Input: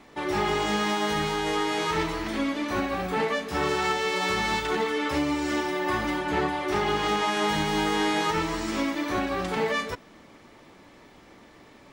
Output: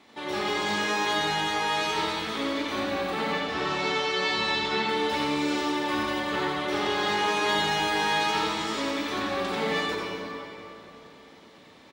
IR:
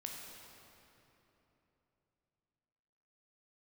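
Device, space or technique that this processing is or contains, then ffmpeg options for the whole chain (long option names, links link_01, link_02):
PA in a hall: -filter_complex "[0:a]asettb=1/sr,asplit=3[link_01][link_02][link_03];[link_01]atrim=end=3.324[link_04];[link_02]atrim=start=3.32:end=4.89,asetpts=PTS-STARTPTS,afade=type=in:duration=0.004:curve=qsin,afade=type=out:start_time=1.566:duration=0.004:curve=qsin,lowpass=5700[link_05];[link_03]atrim=start=4.886[link_06];[link_04][link_05]acrossfade=duration=0.004:curve1=hsin:curve2=qsin[link_07];[link_07][link_06]acrossfade=duration=0.004:curve1=qsin:curve2=hsin,highpass=frequency=170:poles=1,equalizer=frequency=3700:width_type=o:width=0.75:gain=7,aecho=1:1:88:0.562[link_08];[1:a]atrim=start_sample=2205[link_09];[link_08][link_09]afir=irnorm=-1:irlink=0"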